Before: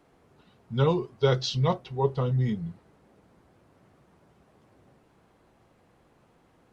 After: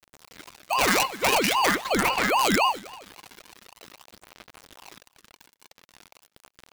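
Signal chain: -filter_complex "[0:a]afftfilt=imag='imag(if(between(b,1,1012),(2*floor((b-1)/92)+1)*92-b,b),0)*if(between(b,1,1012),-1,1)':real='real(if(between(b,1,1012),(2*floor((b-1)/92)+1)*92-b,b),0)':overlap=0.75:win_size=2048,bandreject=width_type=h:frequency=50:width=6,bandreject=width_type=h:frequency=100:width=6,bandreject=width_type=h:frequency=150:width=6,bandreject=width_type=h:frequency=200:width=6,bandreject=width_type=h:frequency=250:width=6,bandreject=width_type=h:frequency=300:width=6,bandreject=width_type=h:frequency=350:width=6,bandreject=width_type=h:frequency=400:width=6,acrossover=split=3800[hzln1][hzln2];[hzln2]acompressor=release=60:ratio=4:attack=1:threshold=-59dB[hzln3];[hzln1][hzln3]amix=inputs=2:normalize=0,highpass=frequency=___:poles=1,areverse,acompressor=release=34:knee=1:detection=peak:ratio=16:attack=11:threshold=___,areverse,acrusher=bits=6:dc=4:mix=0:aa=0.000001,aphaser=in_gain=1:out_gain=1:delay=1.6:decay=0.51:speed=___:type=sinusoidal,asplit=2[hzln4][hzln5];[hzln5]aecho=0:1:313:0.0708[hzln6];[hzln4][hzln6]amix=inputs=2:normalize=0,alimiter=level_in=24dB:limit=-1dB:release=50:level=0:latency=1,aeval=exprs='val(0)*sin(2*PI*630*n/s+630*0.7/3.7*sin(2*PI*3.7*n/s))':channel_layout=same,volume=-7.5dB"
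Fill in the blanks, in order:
74, -35dB, 0.45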